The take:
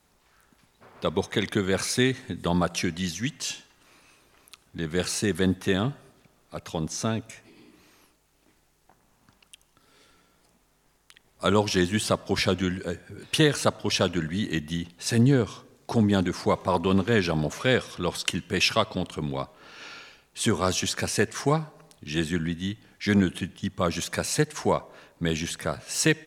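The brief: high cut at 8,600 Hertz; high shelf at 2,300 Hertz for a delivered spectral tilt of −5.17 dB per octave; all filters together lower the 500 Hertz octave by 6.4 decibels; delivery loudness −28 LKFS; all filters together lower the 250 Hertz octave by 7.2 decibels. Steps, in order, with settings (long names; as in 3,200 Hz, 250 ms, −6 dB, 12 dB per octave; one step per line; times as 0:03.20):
low-pass filter 8,600 Hz
parametric band 250 Hz −9 dB
parametric band 500 Hz −4.5 dB
high-shelf EQ 2,300 Hz −9 dB
level +4 dB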